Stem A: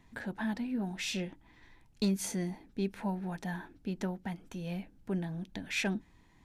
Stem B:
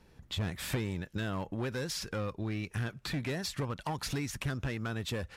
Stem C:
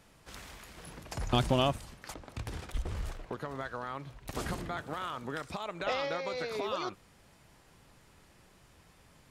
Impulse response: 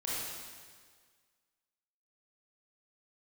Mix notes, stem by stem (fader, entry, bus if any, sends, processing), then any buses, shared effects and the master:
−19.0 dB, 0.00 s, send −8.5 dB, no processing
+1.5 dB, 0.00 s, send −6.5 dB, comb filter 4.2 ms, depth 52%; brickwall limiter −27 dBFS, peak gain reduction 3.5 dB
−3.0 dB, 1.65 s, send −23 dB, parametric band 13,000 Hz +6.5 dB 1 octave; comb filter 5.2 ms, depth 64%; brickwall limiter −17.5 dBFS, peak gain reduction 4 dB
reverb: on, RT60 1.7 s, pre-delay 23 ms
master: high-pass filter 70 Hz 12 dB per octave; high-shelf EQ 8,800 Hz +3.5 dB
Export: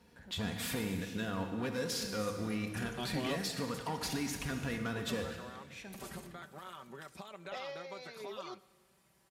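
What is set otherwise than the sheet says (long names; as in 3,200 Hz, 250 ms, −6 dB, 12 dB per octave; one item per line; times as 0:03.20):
stem B +1.5 dB → −4.5 dB
stem C −3.0 dB → −12.0 dB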